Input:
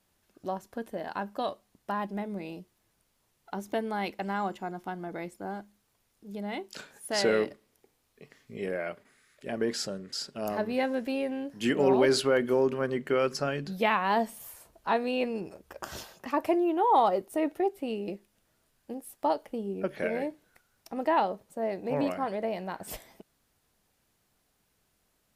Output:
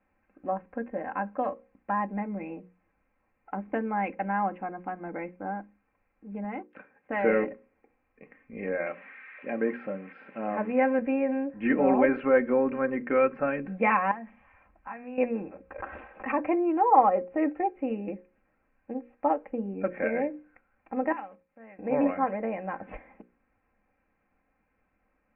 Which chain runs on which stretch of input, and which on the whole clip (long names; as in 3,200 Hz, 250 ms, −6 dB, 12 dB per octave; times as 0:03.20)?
0:06.44–0:07.09: mu-law and A-law mismatch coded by A + high-pass filter 57 Hz + dynamic equaliser 2,400 Hz, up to −5 dB, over −58 dBFS, Q 1.8
0:08.86–0:10.99: spike at every zero crossing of −29.5 dBFS + high-pass filter 150 Hz
0:14.11–0:15.18: parametric band 420 Hz −12.5 dB 1 octave + downward compressor 3 to 1, threshold −41 dBFS
0:15.78–0:16.39: parametric band 150 Hz −12 dB 0.91 octaves + background raised ahead of every attack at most 140 dB per second
0:21.12–0:21.79: one scale factor per block 5 bits + guitar amp tone stack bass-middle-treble 5-5-5
whole clip: Chebyshev low-pass filter 2,500 Hz, order 6; mains-hum notches 60/120/180/240/300/360/420/480/540 Hz; comb filter 3.8 ms, depth 64%; level +1.5 dB